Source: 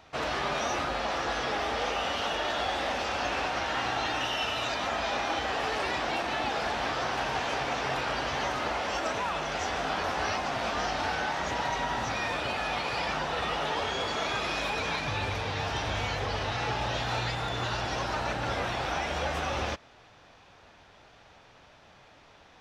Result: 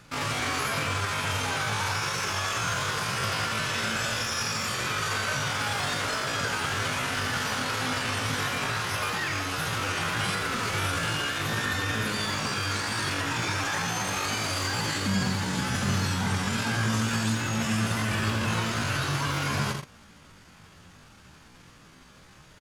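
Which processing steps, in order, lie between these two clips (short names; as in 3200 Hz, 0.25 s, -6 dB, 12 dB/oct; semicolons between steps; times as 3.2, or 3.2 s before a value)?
low shelf 150 Hz +12 dB; pitch shift +11 st; echo 82 ms -6 dB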